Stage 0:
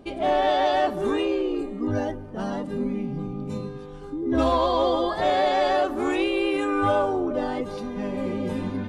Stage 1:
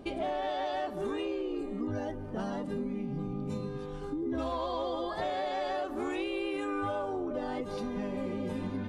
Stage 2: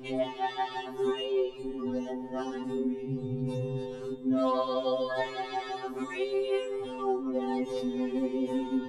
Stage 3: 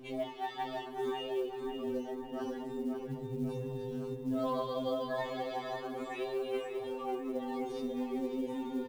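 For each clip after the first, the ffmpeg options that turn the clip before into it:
-af "acompressor=threshold=-32dB:ratio=5"
-af "afftfilt=real='re*2.45*eq(mod(b,6),0)':imag='im*2.45*eq(mod(b,6),0)':win_size=2048:overlap=0.75,volume=4.5dB"
-filter_complex "[0:a]asplit=2[a][b];[b]adelay=544,lowpass=f=2.9k:p=1,volume=-5.5dB,asplit=2[c][d];[d]adelay=544,lowpass=f=2.9k:p=1,volume=0.5,asplit=2[e][f];[f]adelay=544,lowpass=f=2.9k:p=1,volume=0.5,asplit=2[g][h];[h]adelay=544,lowpass=f=2.9k:p=1,volume=0.5,asplit=2[i][j];[j]adelay=544,lowpass=f=2.9k:p=1,volume=0.5,asplit=2[k][l];[l]adelay=544,lowpass=f=2.9k:p=1,volume=0.5[m];[a][c][e][g][i][k][m]amix=inputs=7:normalize=0,acrusher=bits=8:mode=log:mix=0:aa=0.000001,volume=-6.5dB"

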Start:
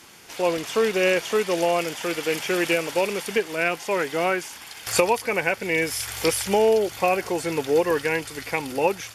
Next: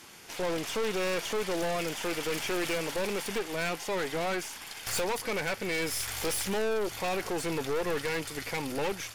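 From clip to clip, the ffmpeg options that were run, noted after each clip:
-af "aeval=exprs='(tanh(25.1*val(0)+0.55)-tanh(0.55))/25.1':c=same"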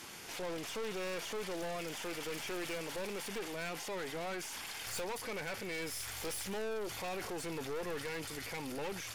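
-af "alimiter=level_in=11dB:limit=-24dB:level=0:latency=1:release=11,volume=-11dB,volume=1.5dB"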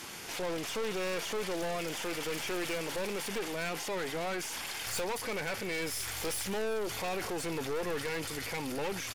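-af "aecho=1:1:359:0.0794,volume=5dB"

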